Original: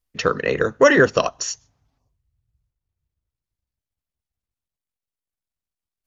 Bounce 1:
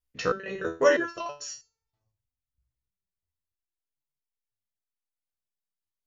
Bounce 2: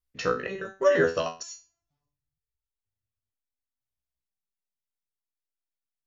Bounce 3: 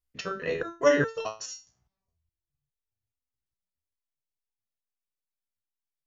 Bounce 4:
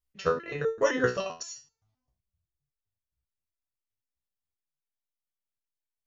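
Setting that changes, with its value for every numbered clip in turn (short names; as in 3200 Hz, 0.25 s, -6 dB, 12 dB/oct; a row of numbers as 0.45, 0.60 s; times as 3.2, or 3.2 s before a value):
stepped resonator, rate: 3.1, 2.1, 4.8, 7.7 Hz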